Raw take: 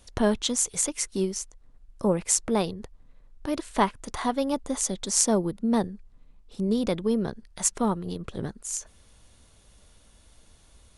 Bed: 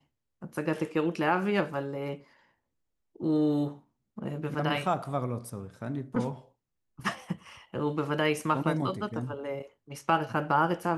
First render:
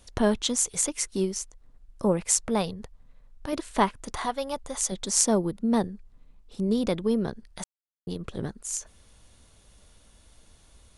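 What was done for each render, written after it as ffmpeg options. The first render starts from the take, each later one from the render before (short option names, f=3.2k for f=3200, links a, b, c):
-filter_complex "[0:a]asettb=1/sr,asplit=3[a][b][c];[a]atrim=end=2.214[d];[b]atrim=start=2.21:end=3.53,asetpts=PTS-STARTPTS,afade=t=in:d=0.004:c=qsin,afade=t=out:st=1.316:d=0.004:c=qsin,equalizer=f=340:w=3.5:g=-9[e];[c]atrim=start=3.526[f];[d][e]acrossfade=d=0.004:c1=hsin:c2=qsin[g];[g][f]acrossfade=d=0.004:c1=qsin:c2=hsin,asettb=1/sr,asplit=3[h][i][j];[h]atrim=end=4.254[k];[i]atrim=start=4.25:end=4.92,asetpts=PTS-STARTPTS,afade=t=in:d=0.004:c=qsin,afade=t=out:st=0.666:d=0.004:c=qsin,equalizer=f=280:t=o:w=1.1:g=-11.5[l];[j]atrim=start=4.916[m];[k][l]acrossfade=d=0.004:c1=hsin:c2=qsin[n];[n][m]acrossfade=d=0.004:c1=qsin:c2=hsin,asplit=3[o][p][q];[o]atrim=end=7.64,asetpts=PTS-STARTPTS,afade=t=out:st=7.636:d=0.004:c=hsin[r];[p]atrim=start=7.64:end=8.07,asetpts=PTS-STARTPTS,volume=0[s];[q]atrim=start=8.07,asetpts=PTS-STARTPTS,afade=t=in:d=0.004:c=hsin[t];[r][s][t]concat=n=3:v=0:a=1"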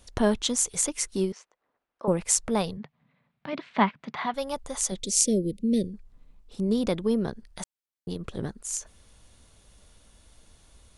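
-filter_complex "[0:a]asettb=1/sr,asplit=3[a][b][c];[a]atrim=end=1.324[d];[b]atrim=start=1.32:end=2.08,asetpts=PTS-STARTPTS,afade=t=in:d=0.004:c=qsin,afade=t=out:st=0.756:d=0.004:c=qsin,highpass=530,lowpass=2.4k[e];[c]atrim=start=2.076[f];[d][e]acrossfade=d=0.004:c1=hsin:c2=qsin[g];[g][f]acrossfade=d=0.004:c1=qsin:c2=hsin,asettb=1/sr,asplit=3[h][i][j];[h]atrim=end=2.774[k];[i]atrim=start=2.77:end=4.34,asetpts=PTS-STARTPTS,afade=t=in:d=0.004:c=qsin,afade=t=out:st=1.566:d=0.004:c=qsin,highpass=f=140:w=0.5412,highpass=f=140:w=1.3066,equalizer=f=150:t=q:w=4:g=9,equalizer=f=220:t=q:w=4:g=4,equalizer=f=330:t=q:w=4:g=-8,equalizer=f=490:t=q:w=4:g=-6,equalizer=f=2.2k:t=q:w=4:g=6,lowpass=f=3.8k:w=0.5412,lowpass=f=3.8k:w=1.3066[l];[j]atrim=start=4.336[m];[k][l]acrossfade=d=0.004:c1=hsin:c2=qsin[n];[n][m]acrossfade=d=0.004:c1=qsin:c2=hsin,asettb=1/sr,asplit=3[o][p][q];[o]atrim=end=4.994[r];[p]atrim=start=4.99:end=5.94,asetpts=PTS-STARTPTS,afade=t=in:d=0.004:c=qsin,afade=t=out:st=0.946:d=0.004:c=qsin,asuperstop=centerf=1100:order=12:qfactor=0.67[s];[q]atrim=start=5.936[t];[r][s]acrossfade=d=0.004:c1=hsin:c2=qsin[u];[u][t]acrossfade=d=0.004:c1=qsin:c2=hsin"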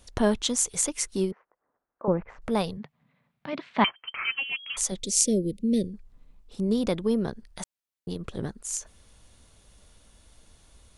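-filter_complex "[0:a]asettb=1/sr,asplit=3[a][b][c];[a]atrim=end=1.314[d];[b]atrim=start=1.31:end=2.42,asetpts=PTS-STARTPTS,afade=t=in:d=0.004:c=qsin,afade=t=out:st=1.106:d=0.004:c=qsin,lowpass=f=1.7k:w=0.5412,lowpass=f=1.7k:w=1.3066[e];[c]atrim=start=2.416[f];[d][e]acrossfade=d=0.004:c1=hsin:c2=qsin[g];[g][f]acrossfade=d=0.004:c1=qsin:c2=hsin,asettb=1/sr,asplit=3[h][i][j];[h]atrim=end=3.844[k];[i]atrim=start=3.84:end=4.77,asetpts=PTS-STARTPTS,afade=t=in:d=0.004:c=qsin,afade=t=out:st=0.926:d=0.004:c=qsin,lowpass=f=2.8k:t=q:w=0.5098,lowpass=f=2.8k:t=q:w=0.6013,lowpass=f=2.8k:t=q:w=0.9,lowpass=f=2.8k:t=q:w=2.563,afreqshift=-3300[l];[j]atrim=start=4.766[m];[k][l]acrossfade=d=0.004:c1=hsin:c2=qsin[n];[n][m]acrossfade=d=0.004:c1=qsin:c2=hsin"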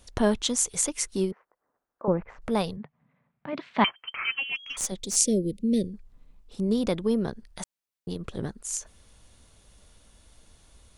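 -filter_complex "[0:a]asettb=1/sr,asplit=3[a][b][c];[a]atrim=end=2.764[d];[b]atrim=start=2.76:end=3.55,asetpts=PTS-STARTPTS,afade=t=in:d=0.004:c=qsin,afade=t=out:st=0.786:d=0.004:c=qsin,lowpass=2k[e];[c]atrim=start=3.546[f];[d][e]acrossfade=d=0.004:c1=hsin:c2=qsin[g];[g][f]acrossfade=d=0.004:c1=qsin:c2=hsin,asplit=3[h][i][j];[h]afade=t=out:st=4.55:d=0.02[k];[i]aeval=exprs='(tanh(6.31*val(0)+0.5)-tanh(0.5))/6.31':c=same,afade=t=in:st=4.55:d=0.02,afade=t=out:st=5.15:d=0.02[l];[j]afade=t=in:st=5.15:d=0.02[m];[k][l][m]amix=inputs=3:normalize=0"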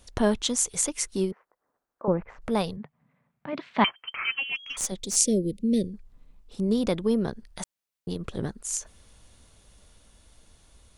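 -af "dynaudnorm=f=420:g=13:m=4dB"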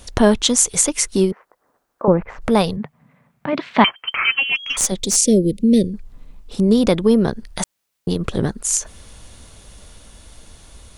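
-filter_complex "[0:a]asplit=2[a][b];[b]acompressor=threshold=-33dB:ratio=6,volume=-2.5dB[c];[a][c]amix=inputs=2:normalize=0,alimiter=level_in=8.5dB:limit=-1dB:release=50:level=0:latency=1"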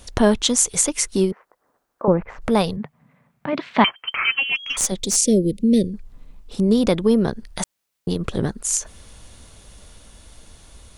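-af "volume=-2.5dB"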